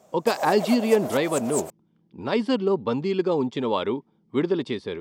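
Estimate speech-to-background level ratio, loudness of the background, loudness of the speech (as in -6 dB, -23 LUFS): 7.5 dB, -32.0 LUFS, -24.5 LUFS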